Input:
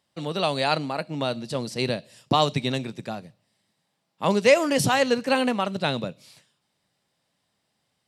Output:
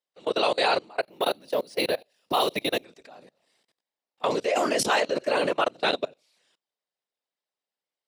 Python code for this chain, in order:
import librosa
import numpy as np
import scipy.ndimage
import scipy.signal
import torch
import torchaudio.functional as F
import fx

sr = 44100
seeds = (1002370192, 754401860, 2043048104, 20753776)

y = fx.peak_eq(x, sr, hz=470.0, db=9.0, octaves=0.63)
y = fx.whisperise(y, sr, seeds[0])
y = fx.level_steps(y, sr, step_db=24)
y = fx.resample_bad(y, sr, factor=3, down='filtered', up='hold', at=(1.02, 2.84))
y = fx.weighting(y, sr, curve='A')
y = y * 10.0 ** (3.5 / 20.0)